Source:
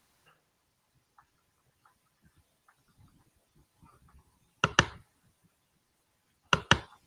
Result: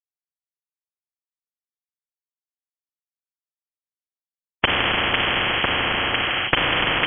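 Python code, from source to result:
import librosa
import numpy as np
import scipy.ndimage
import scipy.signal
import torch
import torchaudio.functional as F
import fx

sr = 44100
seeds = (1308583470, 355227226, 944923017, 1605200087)

p1 = fx.spec_trails(x, sr, decay_s=1.72)
p2 = fx.env_lowpass_down(p1, sr, base_hz=400.0, full_db=-19.5)
p3 = fx.rotary_switch(p2, sr, hz=1.1, then_hz=7.0, switch_at_s=3.74)
p4 = p3 + 0.66 * np.pad(p3, (int(5.4 * sr / 1000.0), 0))[:len(p3)]
p5 = fx.rider(p4, sr, range_db=4, speed_s=0.5)
p6 = p4 + (p5 * 10.0 ** (-0.5 / 20.0))
p7 = fx.schmitt(p6, sr, flips_db=-11.0)
p8 = fx.hum_notches(p7, sr, base_hz=60, count=3)
p9 = fx.fuzz(p8, sr, gain_db=53.0, gate_db=-56.0)
p10 = p9 + fx.echo_alternate(p9, sr, ms=501, hz=1400.0, feedback_pct=51, wet_db=-3.0, dry=0)
p11 = fx.rev_schroeder(p10, sr, rt60_s=3.1, comb_ms=33, drr_db=-3.5)
p12 = fx.freq_invert(p11, sr, carrier_hz=3100)
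p13 = fx.spectral_comp(p12, sr, ratio=10.0)
y = p13 * 10.0 ** (2.5 / 20.0)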